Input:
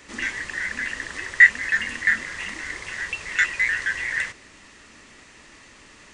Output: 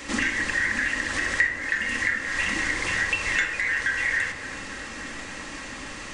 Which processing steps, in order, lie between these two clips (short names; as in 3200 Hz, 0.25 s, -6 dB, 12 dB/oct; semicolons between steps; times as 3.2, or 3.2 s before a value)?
compressor 6:1, threshold -33 dBFS, peak gain reduction 24 dB; on a send: band-limited delay 0.286 s, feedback 82%, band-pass 640 Hz, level -9 dB; on the sum: shoebox room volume 2400 m³, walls furnished, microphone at 2.2 m; gain +9 dB